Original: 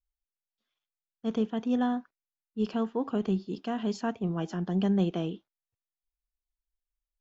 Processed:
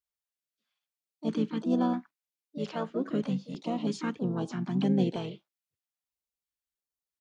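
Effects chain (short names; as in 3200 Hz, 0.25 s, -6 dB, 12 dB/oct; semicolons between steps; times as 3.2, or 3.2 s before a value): harmoniser -5 st -9 dB, +5 st -8 dB; HPF 130 Hz 12 dB/oct; stepped notch 3.1 Hz 270–2100 Hz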